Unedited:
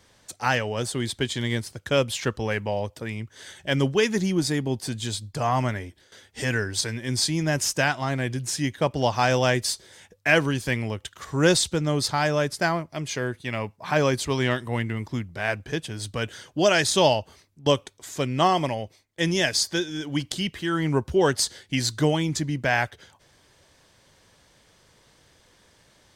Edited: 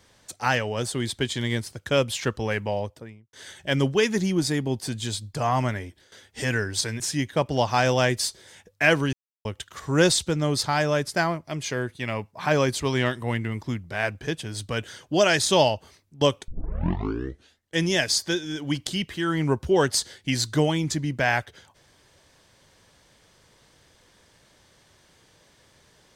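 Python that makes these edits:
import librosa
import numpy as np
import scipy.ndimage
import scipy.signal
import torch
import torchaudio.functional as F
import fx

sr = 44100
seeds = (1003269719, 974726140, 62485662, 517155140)

y = fx.studio_fade_out(x, sr, start_s=2.71, length_s=0.62)
y = fx.edit(y, sr, fx.cut(start_s=7.0, length_s=1.45),
    fx.silence(start_s=10.58, length_s=0.32),
    fx.tape_start(start_s=17.93, length_s=1.31), tone=tone)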